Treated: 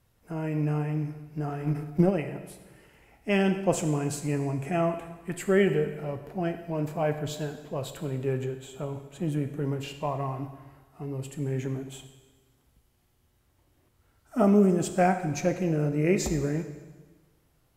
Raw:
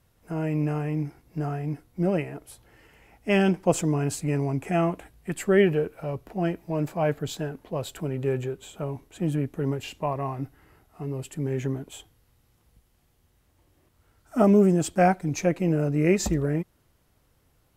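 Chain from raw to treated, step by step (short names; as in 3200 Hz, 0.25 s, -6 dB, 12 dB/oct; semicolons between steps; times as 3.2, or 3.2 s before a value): plate-style reverb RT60 1.3 s, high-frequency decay 0.95×, DRR 7 dB; 1.48–2.11 transient shaper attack +12 dB, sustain +8 dB; gain -3 dB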